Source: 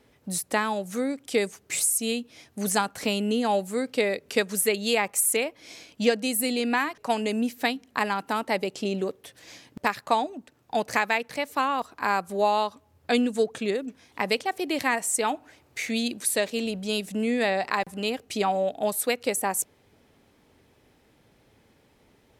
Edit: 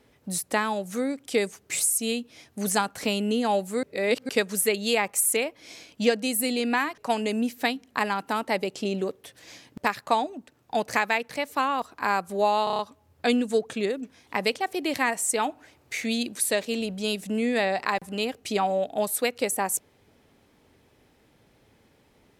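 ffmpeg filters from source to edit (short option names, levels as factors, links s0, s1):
-filter_complex "[0:a]asplit=8[s0][s1][s2][s3][s4][s5][s6][s7];[s0]atrim=end=3.832[s8];[s1]atrim=start=3.828:end=4.292,asetpts=PTS-STARTPTS,areverse[s9];[s2]atrim=start=4.288:end=12.672[s10];[s3]atrim=start=12.638:end=12.672[s11];[s4]atrim=start=12.638:end=12.672[s12];[s5]atrim=start=12.638:end=12.672[s13];[s6]atrim=start=12.638:end=12.672[s14];[s7]atrim=start=12.638[s15];[s8][s9]acrossfade=d=0.004:c1=hsin:c2=hsin[s16];[s16][s10]acrossfade=d=0.004:c1=hsin:c2=hsin[s17];[s17][s11]acrossfade=d=0.004:c1=hsin:c2=hsin[s18];[s18][s12]acrossfade=d=0.004:c1=hsin:c2=hsin[s19];[s19][s13]acrossfade=d=0.004:c1=hsin:c2=hsin[s20];[s20][s14]acrossfade=d=0.004:c1=hsin:c2=hsin[s21];[s21][s15]acrossfade=d=0.004:c1=hsin:c2=hsin"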